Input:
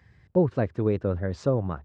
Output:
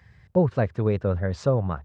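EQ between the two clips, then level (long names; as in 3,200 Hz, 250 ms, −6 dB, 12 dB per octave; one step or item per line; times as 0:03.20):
parametric band 310 Hz −8 dB 0.79 octaves
+4.0 dB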